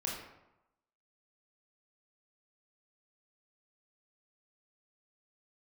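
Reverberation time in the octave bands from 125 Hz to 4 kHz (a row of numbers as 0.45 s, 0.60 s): 0.95 s, 0.90 s, 0.90 s, 0.95 s, 0.75 s, 0.55 s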